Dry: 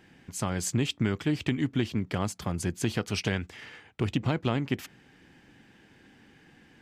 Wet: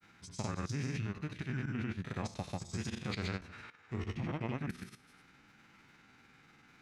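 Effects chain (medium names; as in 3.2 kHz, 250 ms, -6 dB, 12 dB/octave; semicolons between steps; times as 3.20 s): spectral sustain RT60 0.59 s; level held to a coarse grid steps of 15 dB; formant shift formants -4 st; granulator, pitch spread up and down by 0 st; tape noise reduction on one side only encoder only; trim -5 dB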